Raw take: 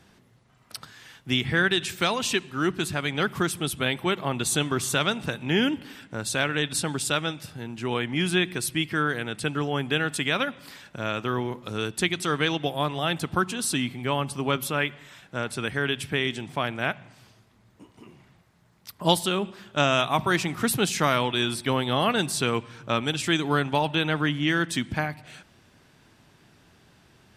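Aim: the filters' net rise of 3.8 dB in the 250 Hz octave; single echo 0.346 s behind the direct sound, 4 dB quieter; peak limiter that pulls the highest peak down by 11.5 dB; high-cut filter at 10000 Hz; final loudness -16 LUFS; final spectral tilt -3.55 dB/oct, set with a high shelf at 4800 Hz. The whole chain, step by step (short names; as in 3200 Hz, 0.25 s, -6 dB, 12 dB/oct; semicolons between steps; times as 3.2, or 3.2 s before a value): LPF 10000 Hz; bell 250 Hz +5 dB; high shelf 4800 Hz +8 dB; limiter -14 dBFS; echo 0.346 s -4 dB; gain +8.5 dB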